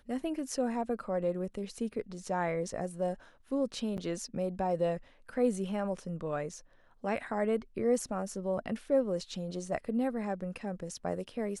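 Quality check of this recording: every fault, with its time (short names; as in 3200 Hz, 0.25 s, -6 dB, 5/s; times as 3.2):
3.97–3.98 gap 9.3 ms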